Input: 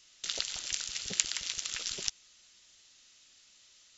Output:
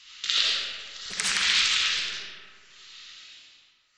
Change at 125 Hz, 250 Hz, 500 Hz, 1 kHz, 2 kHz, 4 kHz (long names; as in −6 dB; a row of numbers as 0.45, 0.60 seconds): can't be measured, +3.5 dB, +3.0 dB, +15.0 dB, +15.5 dB, +12.0 dB